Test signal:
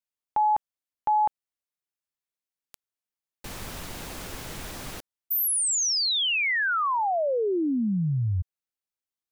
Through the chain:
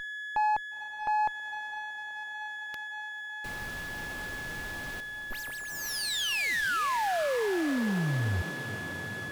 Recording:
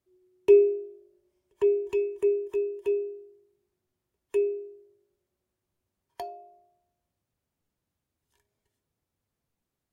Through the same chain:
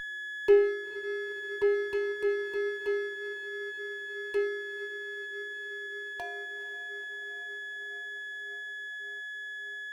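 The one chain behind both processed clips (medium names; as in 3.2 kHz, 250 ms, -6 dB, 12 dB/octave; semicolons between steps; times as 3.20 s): whistle 1.7 kHz -31 dBFS; echo that smears into a reverb 479 ms, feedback 78%, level -13.5 dB; sliding maximum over 5 samples; trim -4 dB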